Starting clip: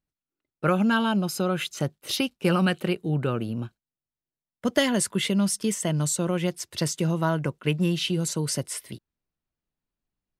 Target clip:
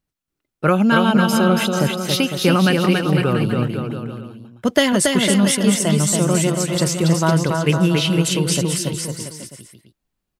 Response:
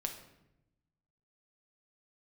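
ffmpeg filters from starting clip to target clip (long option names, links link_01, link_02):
-af "aecho=1:1:280|504|683.2|826.6|941.2:0.631|0.398|0.251|0.158|0.1,volume=6.5dB"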